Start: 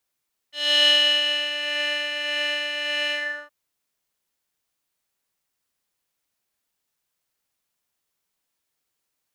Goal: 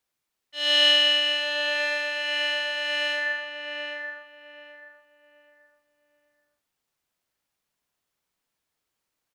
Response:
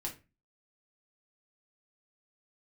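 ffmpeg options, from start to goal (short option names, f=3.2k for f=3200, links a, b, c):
-filter_complex "[0:a]highshelf=f=5.7k:g=-5.5,asplit=2[a][b];[b]adelay=781,lowpass=f=1.7k:p=1,volume=-3.5dB,asplit=2[c][d];[d]adelay=781,lowpass=f=1.7k:p=1,volume=0.32,asplit=2[e][f];[f]adelay=781,lowpass=f=1.7k:p=1,volume=0.32,asplit=2[g][h];[h]adelay=781,lowpass=f=1.7k:p=1,volume=0.32[i];[c][e][g][i]amix=inputs=4:normalize=0[j];[a][j]amix=inputs=2:normalize=0"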